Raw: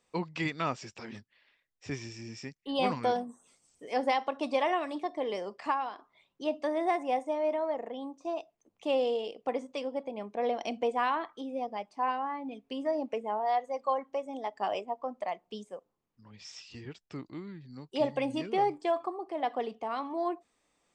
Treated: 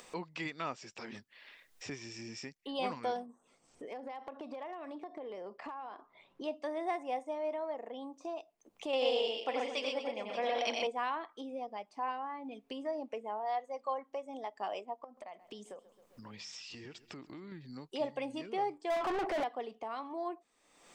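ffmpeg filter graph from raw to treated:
-filter_complex "[0:a]asettb=1/sr,asplit=3[s0][s1][s2];[s0]atrim=end=3.264[s3];[s1]atrim=start=3.26:end=6.44,asetpts=PTS-STARTPTS,afade=t=in:d=0.004:c=qsin,afade=t=out:st=3.176:d=0.004:c=qsin,lowpass=f=1300:p=1,acompressor=threshold=0.0141:ratio=8:attack=3.2:release=140:knee=1:detection=peak,asoftclip=type=hard:threshold=0.0211[s4];[s2]atrim=start=6.436[s5];[s3][s4]acrossfade=d=0.004:c1=hsin:c2=qsin[s6];[s6][s5]acrossfade=d=0.004:c1=qsin:c2=hsin,asettb=1/sr,asplit=3[s7][s8][s9];[s7]atrim=end=8.934[s10];[s8]atrim=start=8.93:end=10.87,asetpts=PTS-STARTPTS,afade=t=in:d=0.004:c=qsin,afade=t=out:st=1.936:d=0.004:c=qsin,equalizer=f=3400:w=0.38:g=11,aecho=1:1:89|125|231|580|829:0.631|0.631|0.251|0.251|0.141,atrim=end_sample=85554[s11];[s9]atrim=start=10.866[s12];[s10][s11]acrossfade=d=0.004:c1=hsin:c2=qsin[s13];[s13][s12]acrossfade=d=0.004:c1=qsin:c2=hsin,asettb=1/sr,asplit=3[s14][s15][s16];[s14]atrim=end=15.044[s17];[s15]atrim=start=15.04:end=17.52,asetpts=PTS-STARTPTS,afade=t=in:d=0.004:c=qsin,afade=t=out:st=2.476:d=0.004:c=qsin,acompressor=threshold=0.00447:ratio=4:attack=3.2:release=140:knee=1:detection=peak,aecho=1:1:133|266|399:0.0944|0.0444|0.0209,atrim=end_sample=109368[s18];[s16]atrim=start=17.516[s19];[s17][s18]acrossfade=d=0.004:c1=hsin:c2=qsin[s20];[s20][s19]acrossfade=d=0.004:c1=qsin:c2=hsin,asettb=1/sr,asplit=3[s21][s22][s23];[s21]atrim=end=18.904[s24];[s22]atrim=start=18.9:end=19.44,asetpts=PTS-STARTPTS,afade=t=in:d=0.004:c=qsin,afade=t=out:st=0.536:d=0.004:c=qsin,bandreject=f=1200:w=8.2,asplit=2[s25][s26];[s26]highpass=f=720:p=1,volume=89.1,asoftclip=type=tanh:threshold=0.106[s27];[s25][s27]amix=inputs=2:normalize=0,lowpass=f=1700:p=1,volume=0.501[s28];[s23]atrim=start=19.436[s29];[s24][s28]acrossfade=d=0.004:c1=hsin:c2=qsin[s30];[s30][s29]acrossfade=d=0.004:c1=qsin:c2=hsin,equalizer=f=73:w=0.53:g=-10,acompressor=mode=upward:threshold=0.0282:ratio=2.5,volume=0.501"

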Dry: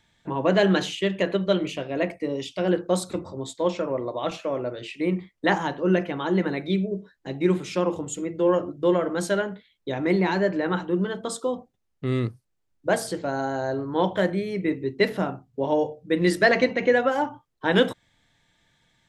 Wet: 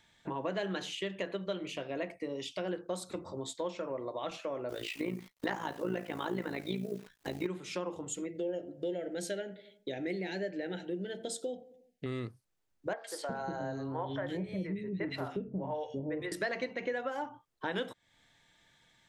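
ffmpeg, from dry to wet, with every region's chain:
-filter_complex "[0:a]asettb=1/sr,asplit=3[s0][s1][s2];[s0]atrim=end=4.694[s3];[s1]atrim=start=4.69:end=7.47,asetpts=PTS-STARTPTS,afade=t=in:d=0.004:c=qsin,afade=t=out:st=2.776:d=0.004:c=qsin,acontrast=78,acrusher=bits=8:dc=4:mix=0:aa=0.000001,tremolo=f=56:d=0.75[s4];[s2]atrim=start=7.466[s5];[s3][s4]acrossfade=d=0.004:c1=hsin:c2=qsin[s6];[s6][s5]acrossfade=d=0.004:c1=qsin:c2=hsin,asettb=1/sr,asplit=3[s7][s8][s9];[s7]atrim=end=8.264[s10];[s8]atrim=start=8.26:end=12.06,asetpts=PTS-STARTPTS,afade=t=in:d=0.004:c=qsin,afade=t=out:st=3.796:d=0.004:c=qsin,asuperstop=centerf=1100:order=4:qfactor=1.1,lowshelf=f=77:g=-11,asplit=2[s11][s12];[s12]adelay=90,lowpass=f=1400:p=1,volume=0.0944,asplit=2[s13][s14];[s14]adelay=90,lowpass=f=1400:p=1,volume=0.53,asplit=2[s15][s16];[s16]adelay=90,lowpass=f=1400:p=1,volume=0.53,asplit=2[s17][s18];[s18]adelay=90,lowpass=f=1400:p=1,volume=0.53[s19];[s11][s13][s15][s17][s19]amix=inputs=5:normalize=0,atrim=end_sample=167580[s20];[s9]atrim=start=12.056[s21];[s10][s20]acrossfade=d=0.004:c1=hsin:c2=qsin[s22];[s22][s21]acrossfade=d=0.004:c1=qsin:c2=hsin,asettb=1/sr,asplit=3[s23][s24][s25];[s23]atrim=end=12.934[s26];[s24]atrim=start=12.93:end=16.32,asetpts=PTS-STARTPTS,afade=t=in:d=0.004:c=qsin,afade=t=out:st=3.386:d=0.004:c=qsin,bass=f=250:g=9,treble=f=4000:g=-5,acrossover=split=450|2200[s27][s28][s29];[s29]adelay=110[s30];[s27]adelay=360[s31];[s31][s28][s30]amix=inputs=3:normalize=0,atrim=end_sample=149499[s32];[s25]atrim=start=16.316[s33];[s26][s32]acrossfade=d=0.004:c1=hsin:c2=qsin[s34];[s34][s33]acrossfade=d=0.004:c1=qsin:c2=hsin,lowshelf=f=270:g=-6.5,acompressor=threshold=0.0141:ratio=3"

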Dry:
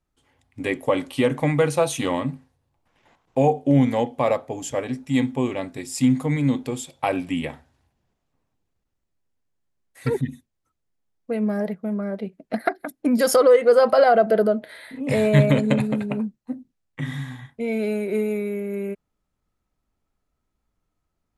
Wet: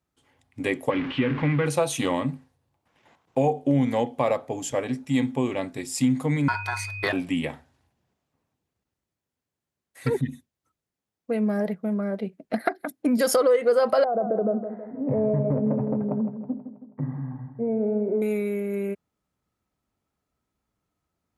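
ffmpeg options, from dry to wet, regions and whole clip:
-filter_complex "[0:a]asettb=1/sr,asplit=3[s0][s1][s2];[s0]atrim=end=0.904[s3];[s1]atrim=start=0.9:end=1.66,asetpts=PTS-STARTPTS,afade=t=in:d=0.004:c=qsin,afade=t=out:st=0.756:d=0.004:c=qsin,aeval=exprs='val(0)+0.5*0.0668*sgn(val(0))':c=same,lowpass=f=2800:w=0.5412,lowpass=f=2800:w=1.3066,equalizer=f=650:w=1.3:g=-12.5[s4];[s2]atrim=start=1.656[s5];[s3][s4]acrossfade=d=0.004:c1=hsin:c2=qsin[s6];[s6][s5]acrossfade=d=0.004:c1=qsin:c2=hsin,asettb=1/sr,asplit=3[s7][s8][s9];[s7]atrim=end=6.484[s10];[s8]atrim=start=6.48:end=7.13,asetpts=PTS-STARTPTS,afade=t=in:d=0.004:c=qsin,afade=t=out:st=0.646:d=0.004:c=qsin,equalizer=f=3200:t=o:w=0.27:g=11.5,aeval=exprs='val(0)+0.0398*sin(2*PI*1300*n/s)':c=same,aeval=exprs='val(0)*sin(2*PI*1200*n/s)':c=same[s11];[s9]atrim=start=7.126[s12];[s10][s11]acrossfade=d=0.004:c1=hsin:c2=qsin[s13];[s13][s12]acrossfade=d=0.004:c1=qsin:c2=hsin,asettb=1/sr,asplit=3[s14][s15][s16];[s14]atrim=end=14.044[s17];[s15]atrim=start=14.04:end=18.22,asetpts=PTS-STARTPTS,afade=t=in:d=0.004:c=qsin,afade=t=out:st=4.176:d=0.004:c=qsin,acompressor=threshold=0.126:ratio=6:attack=3.2:release=140:knee=1:detection=peak,lowpass=f=1000:w=0.5412,lowpass=f=1000:w=1.3066,aecho=1:1:161|322|483|644|805|966:0.299|0.155|0.0807|0.042|0.0218|0.0114,atrim=end_sample=184338[s18];[s16]atrim=start=18.216[s19];[s17][s18]acrossfade=d=0.004:c1=hsin:c2=qsin[s20];[s20][s19]acrossfade=d=0.004:c1=qsin:c2=hsin,highpass=77,acompressor=threshold=0.1:ratio=2"

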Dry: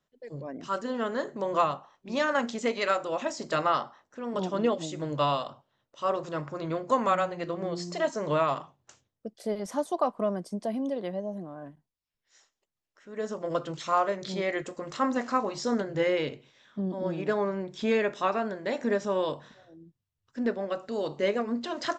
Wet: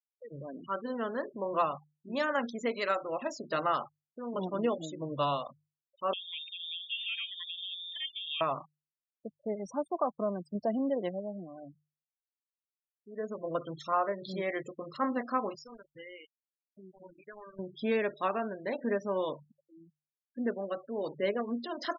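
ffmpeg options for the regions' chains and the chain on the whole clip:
-filter_complex "[0:a]asettb=1/sr,asplit=3[s0][s1][s2];[s0]atrim=end=6.134[s3];[s1]atrim=start=6.13:end=8.41,asetpts=PTS-STARTPTS,afade=t=in:d=0.004:c=qsin,afade=t=out:st=2.276:d=0.004:c=qsin,lowpass=f=3200:t=q:w=0.5098,lowpass=f=3200:t=q:w=0.6013,lowpass=f=3200:t=q:w=0.9,lowpass=f=3200:t=q:w=2.563,afreqshift=-3800,acompressor=threshold=0.0178:ratio=2:attack=3.2:release=140:knee=1:detection=peak[s4];[s2]atrim=start=8.406[s5];[s3][s4]acrossfade=d=0.004:c1=hsin:c2=qsin[s6];[s6][s5]acrossfade=d=0.004:c1=qsin:c2=hsin,asettb=1/sr,asplit=3[s7][s8][s9];[s7]atrim=end=10.554[s10];[s8]atrim=start=10.55:end=11.09,asetpts=PTS-STARTPTS,afade=t=in:d=0.004:c=qsin,afade=t=out:st=0.536:d=0.004:c=qsin,lowshelf=f=330:g=-3,acontrast=41[s11];[s9]atrim=start=11.086[s12];[s10][s11]acrossfade=d=0.004:c1=hsin:c2=qsin[s13];[s13][s12]acrossfade=d=0.004:c1=qsin:c2=hsin,asettb=1/sr,asplit=3[s14][s15][s16];[s14]atrim=end=15.554[s17];[s15]atrim=start=15.55:end=17.59,asetpts=PTS-STARTPTS,afade=t=in:d=0.004:c=qsin,afade=t=out:st=2.036:d=0.004:c=qsin,tiltshelf=f=900:g=-8,acompressor=threshold=0.00562:ratio=2.5:attack=3.2:release=140:knee=1:detection=peak,aeval=exprs='val(0)*gte(abs(val(0)),0.00794)':c=same[s18];[s16]atrim=start=17.586[s19];[s17][s18]acrossfade=d=0.004:c1=hsin:c2=qsin[s20];[s20][s19]acrossfade=d=0.004:c1=qsin:c2=hsin,afftfilt=real='re*gte(hypot(re,im),0.0178)':imag='im*gte(hypot(re,im),0.0178)':win_size=1024:overlap=0.75,bandreject=f=50:t=h:w=6,bandreject=f=100:t=h:w=6,bandreject=f=150:t=h:w=6,volume=0.631"

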